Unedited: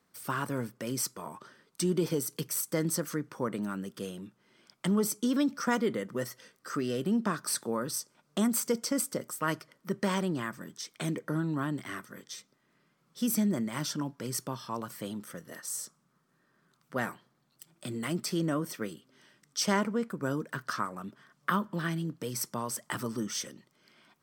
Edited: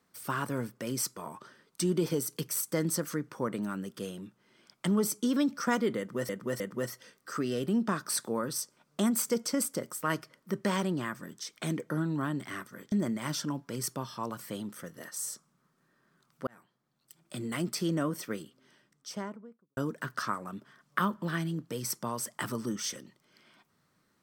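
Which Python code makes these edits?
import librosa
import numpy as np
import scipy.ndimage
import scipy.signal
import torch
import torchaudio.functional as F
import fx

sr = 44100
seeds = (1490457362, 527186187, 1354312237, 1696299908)

y = fx.studio_fade_out(x, sr, start_s=18.87, length_s=1.41)
y = fx.edit(y, sr, fx.repeat(start_s=5.98, length_s=0.31, count=3),
    fx.cut(start_s=12.3, length_s=1.13),
    fx.fade_in_span(start_s=16.98, length_s=0.96), tone=tone)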